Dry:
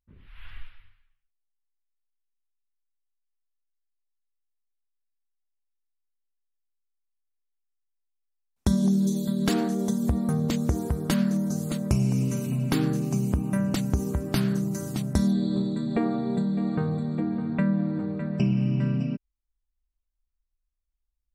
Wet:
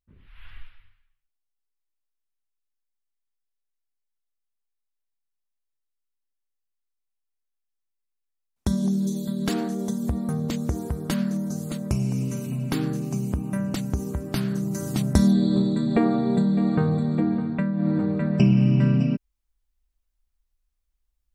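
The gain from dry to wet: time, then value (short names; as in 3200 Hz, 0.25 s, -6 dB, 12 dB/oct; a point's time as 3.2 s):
14.49 s -1.5 dB
15.02 s +5 dB
17.32 s +5 dB
17.73 s -3 dB
17.88 s +6 dB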